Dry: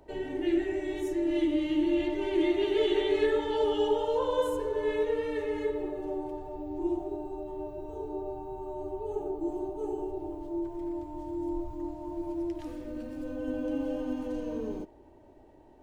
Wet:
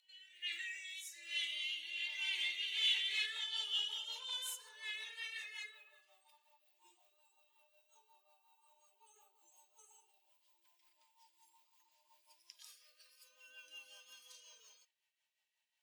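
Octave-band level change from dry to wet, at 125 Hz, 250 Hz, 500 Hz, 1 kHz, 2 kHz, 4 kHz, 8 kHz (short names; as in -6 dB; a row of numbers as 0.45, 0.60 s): under -40 dB, under -40 dB, under -40 dB, -25.0 dB, -0.5 dB, +5.5 dB, n/a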